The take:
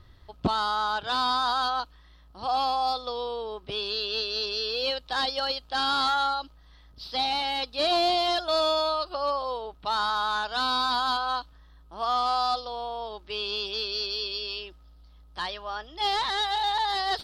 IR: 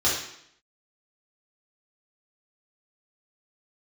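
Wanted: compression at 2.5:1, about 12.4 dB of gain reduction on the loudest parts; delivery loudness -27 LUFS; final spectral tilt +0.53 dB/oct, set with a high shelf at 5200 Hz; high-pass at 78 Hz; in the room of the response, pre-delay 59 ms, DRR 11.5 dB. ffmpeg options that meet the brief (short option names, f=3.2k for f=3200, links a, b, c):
-filter_complex "[0:a]highpass=78,highshelf=f=5.2k:g=3,acompressor=threshold=-40dB:ratio=2.5,asplit=2[a][b];[1:a]atrim=start_sample=2205,adelay=59[c];[b][c]afir=irnorm=-1:irlink=0,volume=-25dB[d];[a][d]amix=inputs=2:normalize=0,volume=9.5dB"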